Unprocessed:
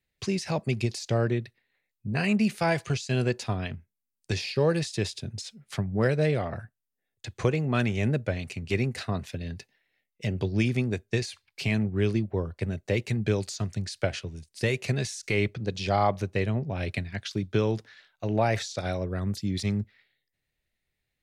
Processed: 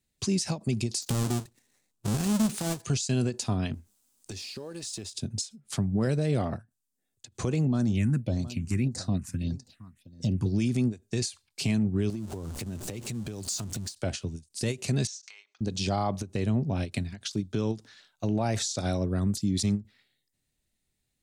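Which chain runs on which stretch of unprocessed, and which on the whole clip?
0:01.02–0:02.82: each half-wave held at its own peak + downward compressor, threshold −29 dBFS
0:03.74–0:05.13: mu-law and A-law mismatch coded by mu + parametric band 150 Hz −13.5 dB 0.44 octaves + downward compressor 4 to 1, threshold −41 dBFS
0:07.67–0:10.46: notch filter 420 Hz, Q 5.3 + single-tap delay 718 ms −20.5 dB + all-pass phaser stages 4, 1.7 Hz, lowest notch 550–2,800 Hz
0:12.10–0:13.95: converter with a step at zero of −35 dBFS + downward compressor 12 to 1, threshold −35 dBFS
0:15.07–0:15.61: Chebyshev band-pass filter 890–6,300 Hz, order 3 + downward compressor 20 to 1, threshold −42 dBFS
whole clip: graphic EQ with 10 bands 250 Hz +6 dB, 500 Hz −4 dB, 2,000 Hz −8 dB, 8,000 Hz +9 dB; brickwall limiter −20.5 dBFS; every ending faded ahead of time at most 280 dB per second; level +2 dB

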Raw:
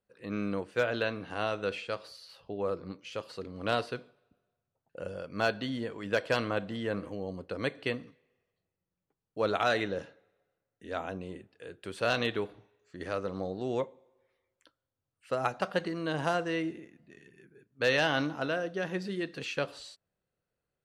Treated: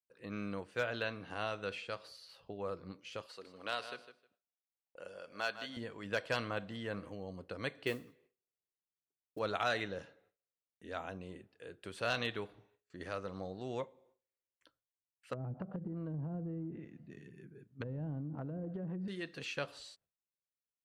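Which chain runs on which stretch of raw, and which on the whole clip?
0:03.26–0:05.77: high-pass filter 860 Hz 6 dB per octave + repeating echo 155 ms, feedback 16%, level −12 dB
0:07.86–0:09.39: parametric band 370 Hz +9.5 dB 0.57 octaves + noise that follows the level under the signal 25 dB
0:15.33–0:19.08: treble cut that deepens with the level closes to 320 Hz, closed at −27.5 dBFS + parametric band 140 Hz +13 dB 2.5 octaves + downward compressor 12 to 1, threshold −29 dBFS
whole clip: noise gate with hold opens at −57 dBFS; dynamic equaliser 350 Hz, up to −5 dB, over −41 dBFS, Q 0.75; level −4.5 dB

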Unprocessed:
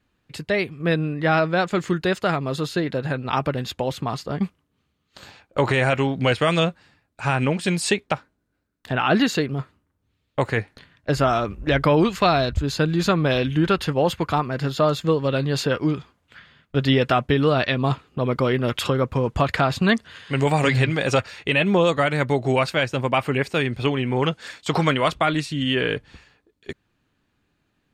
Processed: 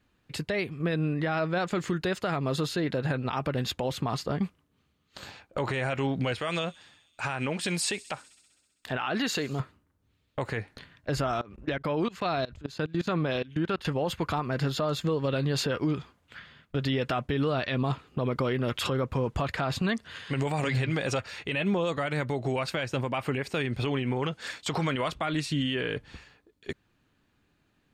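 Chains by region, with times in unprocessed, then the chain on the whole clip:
0:06.40–0:09.60: low-shelf EQ 340 Hz −7.5 dB + delay with a high-pass on its return 65 ms, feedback 75%, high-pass 5,500 Hz, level −18 dB
0:11.41–0:13.85: high-pass filter 130 Hz 6 dB per octave + high-shelf EQ 6,200 Hz −6 dB + output level in coarse steps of 23 dB
whole clip: downward compressor 2.5 to 1, threshold −24 dBFS; brickwall limiter −19.5 dBFS

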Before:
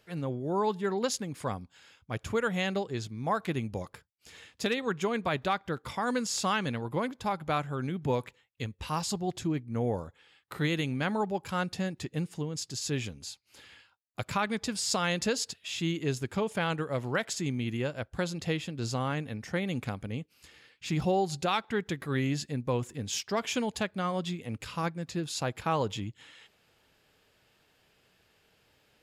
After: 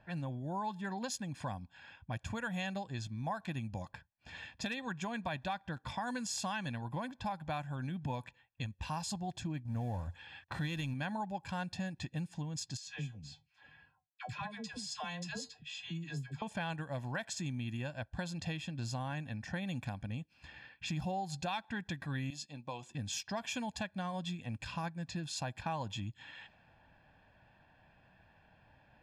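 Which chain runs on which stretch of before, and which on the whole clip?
0:09.65–0:10.94: mu-law and A-law mismatch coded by mu + parametric band 87 Hz +8 dB 0.63 octaves
0:12.77–0:16.42: tuned comb filter 150 Hz, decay 0.16 s, harmonics odd, mix 80% + all-pass dispersion lows, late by 103 ms, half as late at 720 Hz
0:22.30–0:22.95: high-pass filter 1,100 Hz 6 dB per octave + parametric band 1,700 Hz −13.5 dB 0.84 octaves + double-tracking delay 14 ms −11 dB
whole clip: comb filter 1.2 ms, depth 79%; downward compressor 2.5 to 1, threshold −45 dBFS; low-pass that shuts in the quiet parts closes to 1,500 Hz, open at −37.5 dBFS; level +3 dB

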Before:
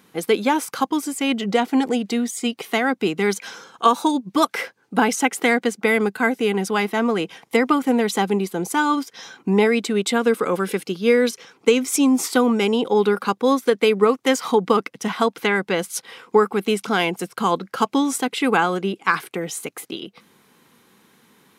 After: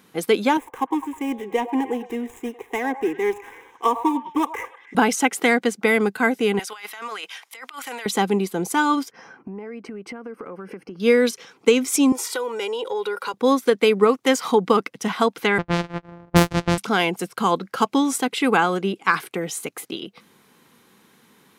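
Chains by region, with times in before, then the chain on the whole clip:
0:00.57–0:04.95: running median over 15 samples + phaser with its sweep stopped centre 920 Hz, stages 8 + echo through a band-pass that steps 102 ms, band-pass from 760 Hz, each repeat 0.7 octaves, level −8.5 dB
0:06.59–0:08.06: high-pass filter 1,300 Hz + compressor whose output falls as the input rises −35 dBFS
0:09.11–0:11.00: moving average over 12 samples + downward compressor 12 to 1, threshold −31 dBFS
0:12.12–0:13.34: high-pass filter 430 Hz + comb filter 2.1 ms, depth 64% + downward compressor 2.5 to 1, threshold −26 dBFS
0:15.58–0:16.78: samples sorted by size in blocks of 256 samples + low-pass that shuts in the quiet parts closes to 920 Hz, open at −12 dBFS
whole clip: no processing

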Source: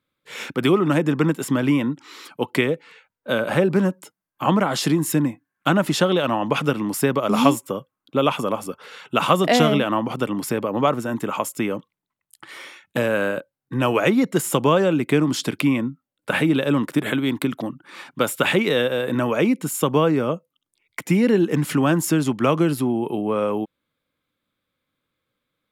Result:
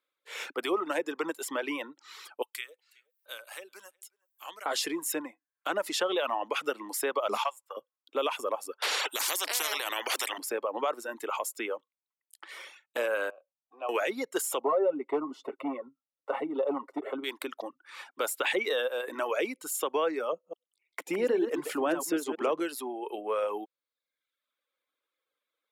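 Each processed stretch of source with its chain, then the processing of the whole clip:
0:02.42–0:04.66: first-order pre-emphasis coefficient 0.97 + upward compression, threshold −55 dBFS + single-tap delay 367 ms −23 dB
0:07.37–0:07.77: high-pass filter 690 Hz 24 dB per octave + high-shelf EQ 4,500 Hz −7 dB + transient designer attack 0 dB, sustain −9 dB
0:08.82–0:10.38: low shelf with overshoot 260 Hz −8 dB, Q 3 + every bin compressed towards the loudest bin 10 to 1
0:13.30–0:13.89: mu-law and A-law mismatch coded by mu + formant filter a + tilt shelving filter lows +4.5 dB, about 780 Hz
0:14.60–0:17.24: comb filter 7.4 ms, depth 64% + hard clipping −10.5 dBFS + Savitzky-Golay smoothing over 65 samples
0:20.32–0:22.60: delay that plays each chunk backwards 107 ms, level −5.5 dB + tilt shelving filter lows +5 dB, about 880 Hz
whole clip: high-pass filter 400 Hz 24 dB per octave; reverb reduction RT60 0.84 s; brickwall limiter −14 dBFS; level −5 dB

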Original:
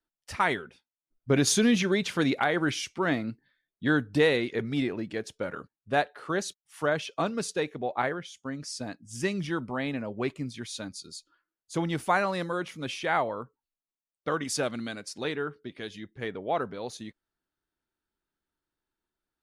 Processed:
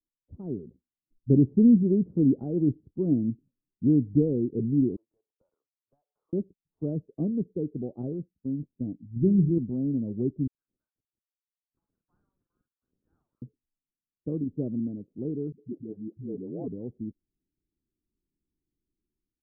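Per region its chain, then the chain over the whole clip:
0:04.96–0:06.33: elliptic band-pass filter 980–6,300 Hz, stop band 60 dB + downward compressor 10 to 1, threshold −44 dBFS
0:09.16–0:09.58: low-shelf EQ 270 Hz +8.5 dB + hum removal 57.72 Hz, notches 33 + log-companded quantiser 6 bits
0:10.47–0:13.42: one scale factor per block 3 bits + Butterworth high-pass 1,500 Hz + double-tracking delay 46 ms −5 dB
0:15.52–0:16.68: high-pass filter 150 Hz + all-pass dispersion highs, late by 107 ms, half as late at 370 Hz
whole clip: de-essing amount 80%; inverse Chebyshev low-pass filter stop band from 2,000 Hz, stop band 80 dB; automatic gain control gain up to 10 dB; level −3.5 dB

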